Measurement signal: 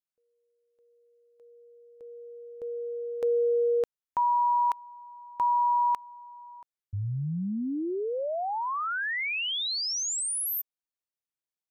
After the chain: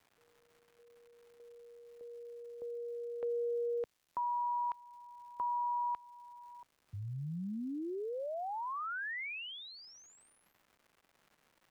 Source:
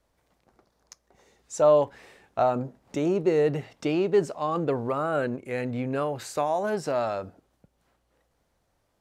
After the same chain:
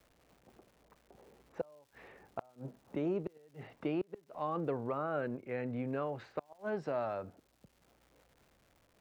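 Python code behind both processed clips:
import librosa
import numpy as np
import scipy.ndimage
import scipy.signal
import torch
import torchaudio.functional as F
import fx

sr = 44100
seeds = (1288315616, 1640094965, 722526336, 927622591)

y = fx.env_lowpass(x, sr, base_hz=690.0, full_db=-26.0)
y = scipy.signal.sosfilt(scipy.signal.butter(2, 2700.0, 'lowpass', fs=sr, output='sos'), y)
y = fx.gate_flip(y, sr, shuts_db=-16.0, range_db=-33)
y = fx.dmg_crackle(y, sr, seeds[0], per_s=390.0, level_db=-54.0)
y = fx.band_squash(y, sr, depth_pct=40)
y = y * librosa.db_to_amplitude(-8.5)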